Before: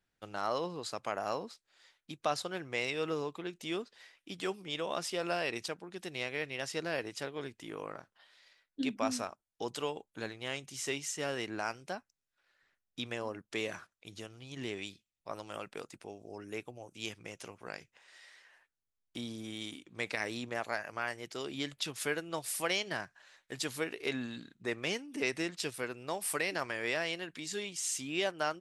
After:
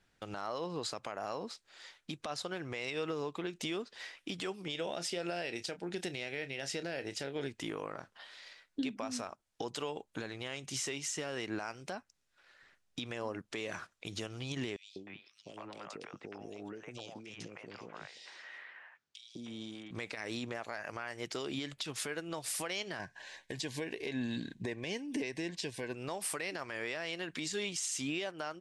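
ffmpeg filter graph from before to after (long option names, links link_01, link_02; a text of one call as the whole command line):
ffmpeg -i in.wav -filter_complex "[0:a]asettb=1/sr,asplit=3[link_01][link_02][link_03];[link_01]atrim=end=4.724[link_04];[link_02]atrim=start=4.72:end=7.49,asetpts=PTS-STARTPTS,afade=type=in:duration=0.004:curve=qsin,afade=type=out:start_time=2.766:duration=0.004:curve=qsin,equalizer=frequency=1100:width=4.7:gain=-13.5,asplit=2[link_05][link_06];[link_06]adelay=29,volume=-13.5dB[link_07];[link_05][link_07]amix=inputs=2:normalize=0,atrim=end_sample=122157[link_08];[link_03]atrim=start=7.486[link_09];[link_04][link_08]acrossfade=duration=0.004:curve1=hsin:curve2=qsin[link_10];[link_10][link_09]acrossfade=duration=0.004:curve1=qsin:curve2=hsin,asettb=1/sr,asplit=3[link_11][link_12][link_13];[link_11]atrim=end=14.764[link_14];[link_12]atrim=start=14.76:end=19.91,asetpts=PTS-STARTPTS,afade=type=in:duration=0.004:curve=qsin,afade=type=out:start_time=5.146:duration=0.004:curve=qsin,acompressor=threshold=-49dB:ratio=16:attack=3.2:release=140:knee=1:detection=peak,highpass=130,lowpass=5700,acrossover=split=580|2800[link_15][link_16][link_17];[link_15]adelay=200[link_18];[link_16]adelay=310[link_19];[link_18][link_19][link_17]amix=inputs=3:normalize=0,atrim=end_sample=227115[link_20];[link_13]atrim=start=19.906[link_21];[link_14][link_20]acrossfade=duration=0.004:curve1=hsin:curve2=qsin[link_22];[link_22][link_21]acrossfade=duration=0.004:curve1=qsin:curve2=hsin,asettb=1/sr,asplit=3[link_23][link_24][link_25];[link_23]atrim=end=22.994[link_26];[link_24]atrim=start=22.99:end=25.95,asetpts=PTS-STARTPTS,afade=type=in:duration=0.004:curve=qsin,afade=type=out:start_time=2.956:duration=0.004:curve=qsin,acrossover=split=8500[link_27][link_28];[link_28]acompressor=threshold=-56dB:ratio=4:attack=1:release=60[link_29];[link_27][link_29]amix=inputs=2:normalize=0,asuperstop=centerf=1300:order=12:qfactor=3.7,lowshelf=frequency=330:gain=4.5[link_30];[link_25]atrim=start=25.946[link_31];[link_26][link_30]acrossfade=duration=0.004:curve1=hsin:curve2=qsin[link_32];[link_32][link_31]acrossfade=duration=0.004:curve1=qsin:curve2=hsin,lowpass=9100,acompressor=threshold=-44dB:ratio=4,alimiter=level_in=13dB:limit=-24dB:level=0:latency=1:release=93,volume=-13dB,volume=10.5dB" out.wav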